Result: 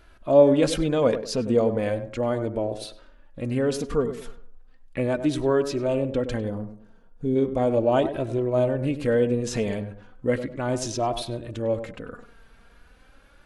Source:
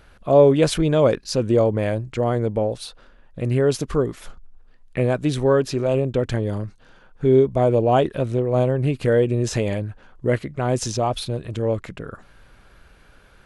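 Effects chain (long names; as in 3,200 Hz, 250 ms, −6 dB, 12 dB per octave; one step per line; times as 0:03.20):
tape delay 99 ms, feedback 37%, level −8.5 dB, low-pass 1,200 Hz
flanger 0.36 Hz, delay 2.9 ms, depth 1.6 ms, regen +31%
0:06.48–0:07.35: parametric band 6,200 Hz → 1,500 Hz −14.5 dB 2.8 octaves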